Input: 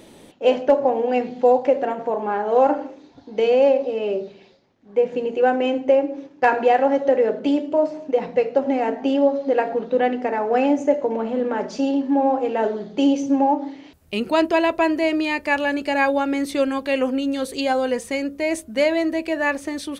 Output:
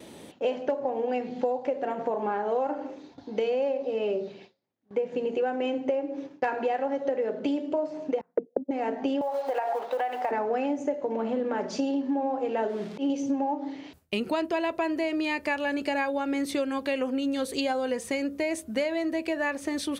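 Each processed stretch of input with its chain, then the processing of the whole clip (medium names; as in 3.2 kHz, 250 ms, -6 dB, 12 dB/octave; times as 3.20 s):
8.21–8.71 s: gate -22 dBFS, range -34 dB + touch-sensitive low-pass 220–1400 Hz down, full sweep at -14 dBFS
9.21–10.31 s: companding laws mixed up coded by mu + resonant high-pass 800 Hz, resonance Q 2.8 + compression 4:1, threshold -20 dBFS
12.69–13.10 s: zero-crossing glitches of -25 dBFS + low-pass 3.1 kHz + slow attack 157 ms
whole clip: gate with hold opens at -38 dBFS; high-pass 67 Hz; compression 6:1, threshold -25 dBFS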